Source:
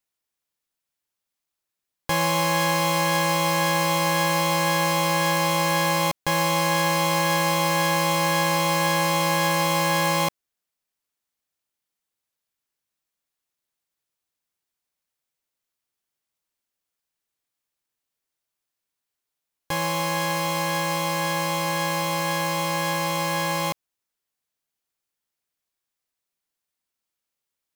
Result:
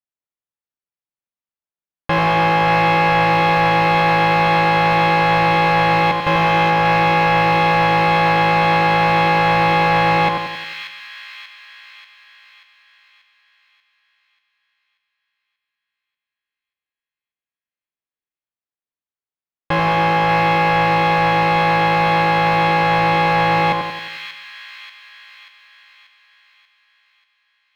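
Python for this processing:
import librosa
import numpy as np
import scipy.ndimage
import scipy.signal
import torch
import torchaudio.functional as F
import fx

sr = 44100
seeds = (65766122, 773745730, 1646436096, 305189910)

y = fx.leveller(x, sr, passes=5)
y = fx.air_absorb(y, sr, metres=350.0)
y = fx.echo_split(y, sr, split_hz=1700.0, low_ms=89, high_ms=586, feedback_pct=52, wet_db=-5)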